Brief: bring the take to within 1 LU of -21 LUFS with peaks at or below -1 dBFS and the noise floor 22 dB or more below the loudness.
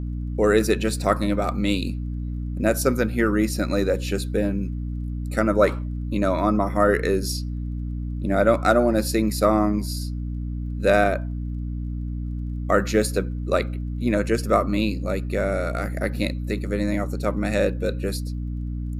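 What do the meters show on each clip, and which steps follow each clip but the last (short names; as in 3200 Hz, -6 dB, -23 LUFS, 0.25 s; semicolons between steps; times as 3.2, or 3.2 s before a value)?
ticks 21/s; hum 60 Hz; harmonics up to 300 Hz; hum level -26 dBFS; loudness -23.5 LUFS; peak -5.5 dBFS; loudness target -21.0 LUFS
-> de-click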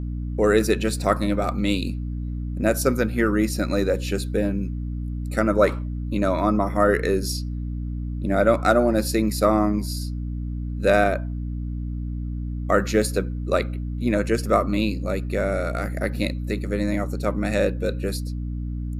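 ticks 0.053/s; hum 60 Hz; harmonics up to 300 Hz; hum level -26 dBFS
-> de-hum 60 Hz, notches 5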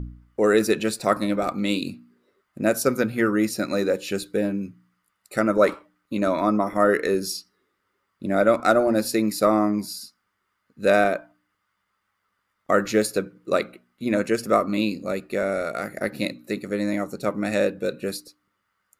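hum none; loudness -23.5 LUFS; peak -5.0 dBFS; loudness target -21.0 LUFS
-> gain +2.5 dB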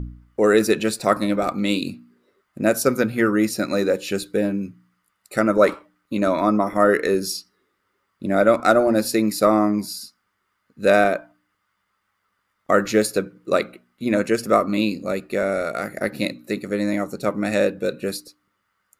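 loudness -21.0 LUFS; peak -2.5 dBFS; noise floor -73 dBFS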